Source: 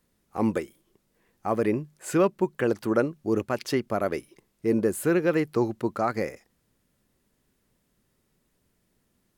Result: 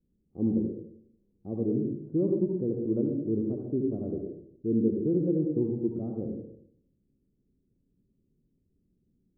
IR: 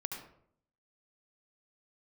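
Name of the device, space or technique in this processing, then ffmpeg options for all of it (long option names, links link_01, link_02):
next room: -filter_complex "[0:a]lowpass=frequency=380:width=0.5412,lowpass=frequency=380:width=1.3066[link_01];[1:a]atrim=start_sample=2205[link_02];[link_01][link_02]afir=irnorm=-1:irlink=0"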